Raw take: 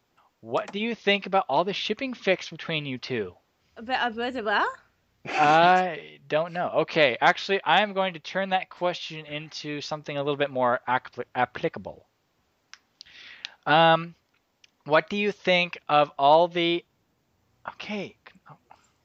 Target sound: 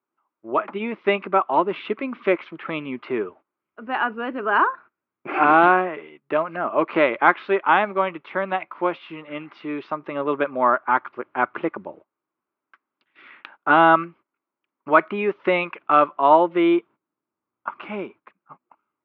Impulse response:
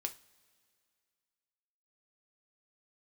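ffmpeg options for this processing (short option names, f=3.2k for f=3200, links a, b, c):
-af "agate=range=-18dB:threshold=-48dB:ratio=16:detection=peak,highpass=320,equalizer=f=330:t=q:w=4:g=5,equalizer=f=490:t=q:w=4:g=-8,equalizer=f=730:t=q:w=4:g=-9,equalizer=f=1.2k:t=q:w=4:g=4,equalizer=f=1.8k:t=q:w=4:g=-8,lowpass=f=2k:w=0.5412,lowpass=f=2k:w=1.3066,volume=8dB"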